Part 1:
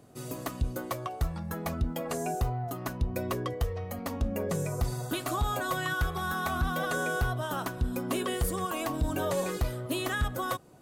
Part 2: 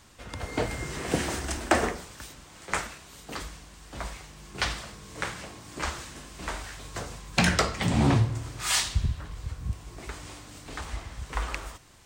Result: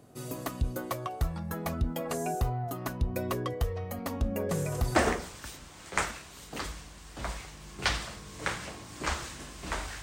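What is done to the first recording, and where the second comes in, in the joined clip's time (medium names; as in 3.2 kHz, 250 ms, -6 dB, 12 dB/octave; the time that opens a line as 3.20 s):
part 1
4.49 s: add part 2 from 1.25 s 0.47 s -15 dB
4.96 s: go over to part 2 from 1.72 s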